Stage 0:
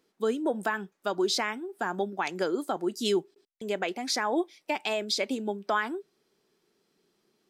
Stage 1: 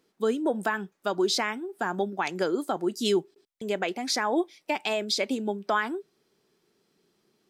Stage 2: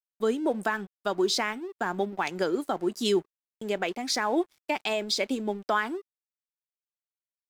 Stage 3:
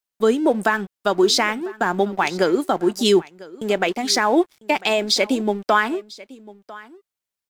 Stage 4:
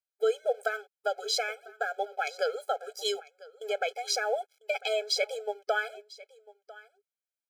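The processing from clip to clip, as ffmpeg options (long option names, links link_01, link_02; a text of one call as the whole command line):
ffmpeg -i in.wav -af "equalizer=frequency=110:width_type=o:width=1.3:gain=4.5,volume=1.5dB" out.wav
ffmpeg -i in.wav -af "aeval=exprs='sgn(val(0))*max(abs(val(0))-0.00335,0)':channel_layout=same" out.wav
ffmpeg -i in.wav -af "aecho=1:1:998:0.0944,volume=9dB" out.wav
ffmpeg -i in.wav -af "afftfilt=real='re*eq(mod(floor(b*sr/1024/430),2),1)':imag='im*eq(mod(floor(b*sr/1024/430),2),1)':win_size=1024:overlap=0.75,volume=-8dB" out.wav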